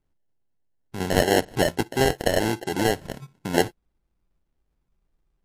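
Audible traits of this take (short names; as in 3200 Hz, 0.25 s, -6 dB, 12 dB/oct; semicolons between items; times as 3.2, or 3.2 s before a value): aliases and images of a low sample rate 1200 Hz, jitter 0%; MP3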